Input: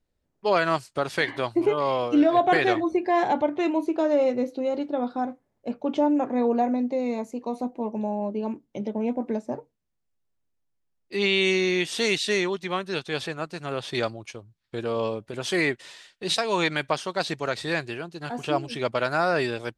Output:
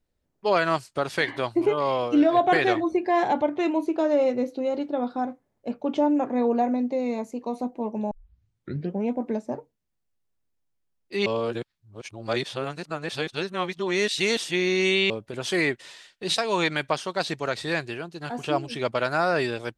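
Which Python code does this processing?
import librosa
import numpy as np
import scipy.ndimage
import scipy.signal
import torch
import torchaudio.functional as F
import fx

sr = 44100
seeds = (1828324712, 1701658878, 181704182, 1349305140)

y = fx.edit(x, sr, fx.tape_start(start_s=8.11, length_s=0.94),
    fx.reverse_span(start_s=11.26, length_s=3.84), tone=tone)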